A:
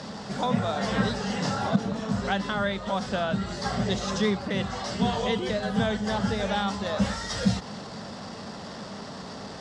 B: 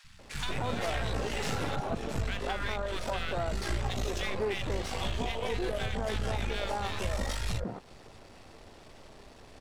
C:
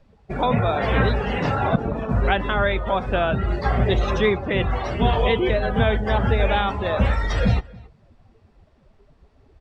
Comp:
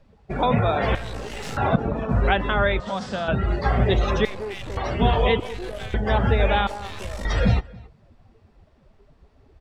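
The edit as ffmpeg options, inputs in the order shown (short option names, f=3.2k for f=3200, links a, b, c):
-filter_complex "[1:a]asplit=4[a][b][c][d];[2:a]asplit=6[e][f][g][h][i][j];[e]atrim=end=0.952[k];[a]atrim=start=0.948:end=1.572[l];[f]atrim=start=1.568:end=2.802[m];[0:a]atrim=start=2.798:end=3.282[n];[g]atrim=start=3.278:end=4.252[o];[b]atrim=start=4.248:end=4.772[p];[h]atrim=start=4.768:end=5.402[q];[c]atrim=start=5.398:end=5.942[r];[i]atrim=start=5.938:end=6.672[s];[d]atrim=start=6.668:end=7.252[t];[j]atrim=start=7.248[u];[k][l]acrossfade=d=0.004:c1=hsin:c2=hsin[v];[v][m]acrossfade=d=0.004:c1=hsin:c2=hsin[w];[w][n]acrossfade=d=0.004:c1=hsin:c2=hsin[x];[x][o]acrossfade=d=0.004:c1=hsin:c2=hsin[y];[y][p]acrossfade=d=0.004:c1=hsin:c2=hsin[z];[z][q]acrossfade=d=0.004:c1=hsin:c2=hsin[aa];[aa][r]acrossfade=d=0.004:c1=hsin:c2=hsin[ab];[ab][s]acrossfade=d=0.004:c1=hsin:c2=hsin[ac];[ac][t]acrossfade=d=0.004:c1=hsin:c2=hsin[ad];[ad][u]acrossfade=d=0.004:c1=hsin:c2=hsin"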